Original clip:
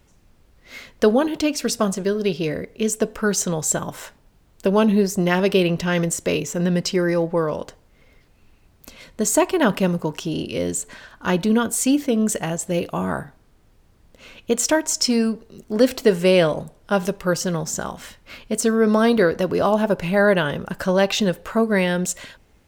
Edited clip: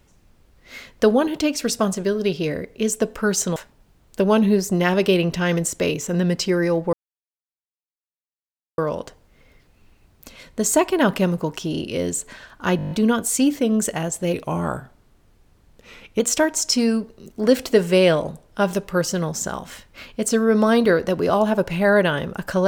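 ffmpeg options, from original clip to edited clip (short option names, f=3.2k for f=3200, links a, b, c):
-filter_complex "[0:a]asplit=12[a][b][c][d][e][f][g][h][i][j][k][l];[a]atrim=end=3.562[m];[b]atrim=start=4.018:end=7.39,asetpts=PTS-STARTPTS,afade=t=out:st=3.368:d=0.004:c=hsin,apad=pad_dur=1.85[n];[c]atrim=start=7.39:end=11.402,asetpts=PTS-STARTPTS,afade=t=in:d=0.004:c=hsin[o];[d]atrim=start=11.378:end=11.402[p];[e]atrim=start=11.378:end=11.402[q];[f]atrim=start=11.378:end=11.402[r];[g]atrim=start=11.378:end=11.402[s];[h]atrim=start=11.378:end=11.402[t];[i]atrim=start=11.378:end=11.402[u];[j]atrim=start=11.378:end=12.804[v];[k]atrim=start=12.8:end=14.52,asetpts=PTS-STARTPTS,asetrate=40572,aresample=44100[w];[l]atrim=start=14.516[x];[n][o]concat=n=2:v=0:a=1[y];[m][y]acrossfade=d=0.004:c1=hsin:c2=hsin[z];[z][p]acrossfade=d=0.004:c1=hsin:c2=hsin[aa];[aa][q]acrossfade=d=0.004:c1=hsin:c2=hsin[ab];[ab][r]acrossfade=d=0.004:c1=hsin:c2=hsin[ac];[ac][s]acrossfade=d=0.004:c1=hsin:c2=hsin[ad];[ad][t]acrossfade=d=0.004:c1=hsin:c2=hsin[ae];[ae][u]acrossfade=d=0.004:c1=hsin:c2=hsin[af];[af][v]acrossfade=d=0.004:c1=hsin:c2=hsin[ag];[ag][w]acrossfade=d=0.004:c1=hsin:c2=hsin[ah];[ah][x]acrossfade=d=0.004:c1=hsin:c2=hsin"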